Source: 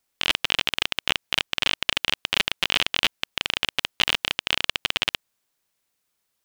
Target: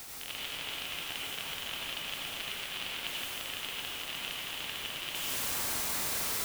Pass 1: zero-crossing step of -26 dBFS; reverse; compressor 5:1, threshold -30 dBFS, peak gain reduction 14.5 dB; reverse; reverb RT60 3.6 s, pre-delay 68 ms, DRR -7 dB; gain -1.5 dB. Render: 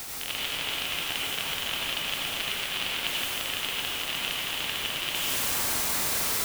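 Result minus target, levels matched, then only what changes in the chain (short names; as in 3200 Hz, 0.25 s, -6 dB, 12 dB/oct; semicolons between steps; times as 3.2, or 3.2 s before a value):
compressor: peak gain reduction -7.5 dB
change: compressor 5:1, threshold -39.5 dBFS, peak gain reduction 22 dB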